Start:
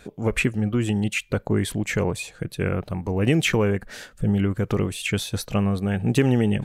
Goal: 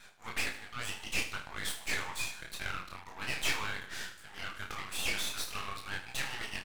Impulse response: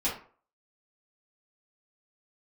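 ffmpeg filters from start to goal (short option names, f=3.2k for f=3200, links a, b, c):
-filter_complex "[0:a]highpass=f=1.1k:w=0.5412,highpass=f=1.1k:w=1.3066,asoftclip=type=tanh:threshold=-25.5dB,flanger=delay=18.5:depth=5.4:speed=1.9,asplit=2[a][b];[b]adelay=32,volume=-5.5dB[c];[a][c]amix=inputs=2:normalize=0,asplit=2[d][e];[e]aecho=0:1:76|152|228|304:0.266|0.114|0.0492|0.0212[f];[d][f]amix=inputs=2:normalize=0,aeval=exprs='max(val(0),0)':c=same,highshelf=f=5.8k:g=-4,volume=6dB"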